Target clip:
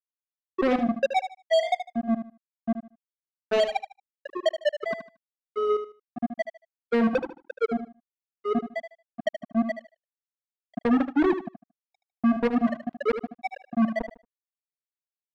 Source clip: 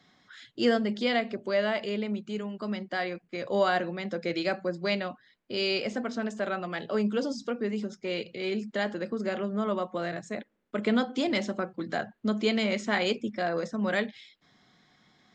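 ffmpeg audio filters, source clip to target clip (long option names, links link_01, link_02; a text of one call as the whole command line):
ffmpeg -i in.wav -af "aemphasis=mode=reproduction:type=75fm,bandreject=frequency=239.5:width_type=h:width=4,bandreject=frequency=479:width_type=h:width=4,bandreject=frequency=718.5:width_type=h:width=4,bandreject=frequency=958:width_type=h:width=4,bandreject=frequency=1197.5:width_type=h:width=4,bandreject=frequency=1437:width_type=h:width=4,bandreject=frequency=1676.5:width_type=h:width=4,bandreject=frequency=1916:width_type=h:width=4,bandreject=frequency=2155.5:width_type=h:width=4,bandreject=frequency=2395:width_type=h:width=4,bandreject=frequency=2634.5:width_type=h:width=4,afftfilt=real='re*gte(hypot(re,im),0.398)':imag='im*gte(hypot(re,im),0.398)':win_size=1024:overlap=0.75,equalizer=frequency=1600:width_type=o:width=1.2:gain=-10,acontrast=86,alimiter=limit=-17dB:level=0:latency=1:release=161,asetrate=48091,aresample=44100,atempo=0.917004,acrusher=bits=3:mix=0:aa=0.5,aecho=1:1:76|152|228:0.316|0.0727|0.0167,volume=1dB" out.wav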